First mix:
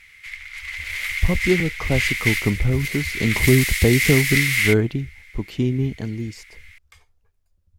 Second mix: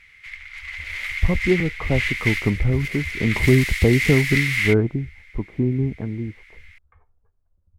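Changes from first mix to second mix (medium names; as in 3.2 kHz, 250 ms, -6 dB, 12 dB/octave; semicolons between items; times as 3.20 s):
speech: add inverse Chebyshev low-pass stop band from 6 kHz, stop band 70 dB; background: add low-pass 2.8 kHz 6 dB/octave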